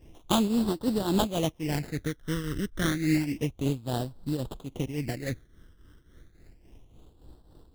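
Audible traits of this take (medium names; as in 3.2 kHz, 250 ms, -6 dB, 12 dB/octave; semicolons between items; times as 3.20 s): aliases and images of a low sample rate 2.4 kHz, jitter 20%; phasing stages 12, 0.3 Hz, lowest notch 760–2200 Hz; tremolo triangle 3.6 Hz, depth 75%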